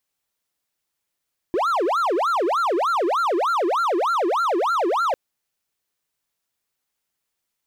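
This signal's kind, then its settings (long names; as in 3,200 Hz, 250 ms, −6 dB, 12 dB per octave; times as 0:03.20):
siren wail 334–1,390 Hz 3.3 per second triangle −16 dBFS 3.60 s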